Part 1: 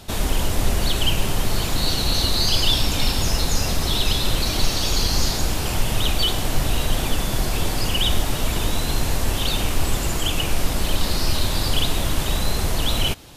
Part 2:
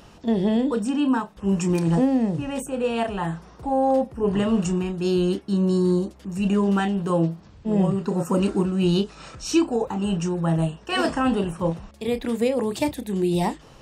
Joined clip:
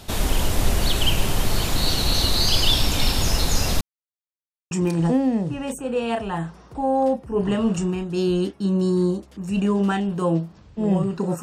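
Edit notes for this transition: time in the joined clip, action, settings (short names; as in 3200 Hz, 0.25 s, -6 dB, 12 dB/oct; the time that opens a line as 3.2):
part 1
3.81–4.71 mute
4.71 switch to part 2 from 1.59 s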